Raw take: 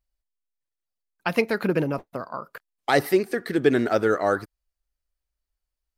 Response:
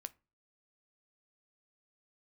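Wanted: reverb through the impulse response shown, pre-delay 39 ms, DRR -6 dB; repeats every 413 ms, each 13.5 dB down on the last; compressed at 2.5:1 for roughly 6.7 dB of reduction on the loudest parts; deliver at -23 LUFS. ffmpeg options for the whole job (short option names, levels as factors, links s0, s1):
-filter_complex "[0:a]acompressor=threshold=0.0631:ratio=2.5,aecho=1:1:413|826:0.211|0.0444,asplit=2[s0][s1];[1:a]atrim=start_sample=2205,adelay=39[s2];[s1][s2]afir=irnorm=-1:irlink=0,volume=3.35[s3];[s0][s3]amix=inputs=2:normalize=0,volume=0.841"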